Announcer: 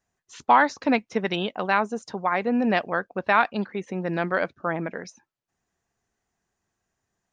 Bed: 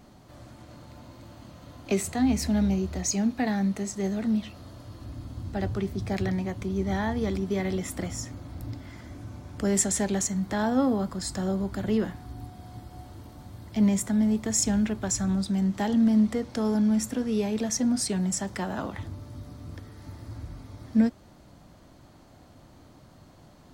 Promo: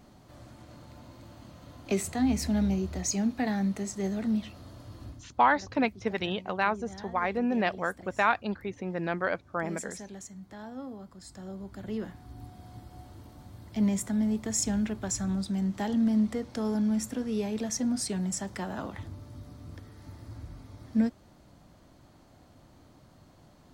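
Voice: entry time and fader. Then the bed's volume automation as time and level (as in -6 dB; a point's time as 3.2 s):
4.90 s, -5.0 dB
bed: 5.08 s -2.5 dB
5.29 s -17 dB
11.08 s -17 dB
12.52 s -4 dB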